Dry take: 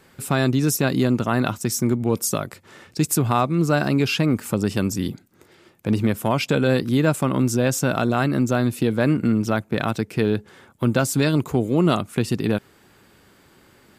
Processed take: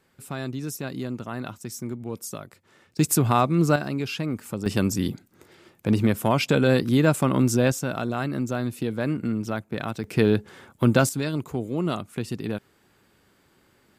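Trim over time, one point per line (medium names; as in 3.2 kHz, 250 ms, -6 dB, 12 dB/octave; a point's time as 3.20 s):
-12 dB
from 2.99 s -0.5 dB
from 3.76 s -8.5 dB
from 4.66 s -0.5 dB
from 7.72 s -7 dB
from 10.04 s +1 dB
from 11.09 s -8 dB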